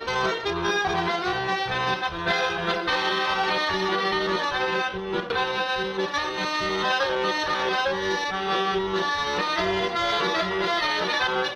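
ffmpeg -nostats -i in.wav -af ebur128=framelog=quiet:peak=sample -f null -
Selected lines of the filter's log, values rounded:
Integrated loudness:
  I:         -24.4 LUFS
  Threshold: -34.4 LUFS
Loudness range:
  LRA:         1.1 LU
  Threshold: -44.5 LUFS
  LRA low:   -25.1 LUFS
  LRA high:  -24.0 LUFS
Sample peak:
  Peak:      -12.2 dBFS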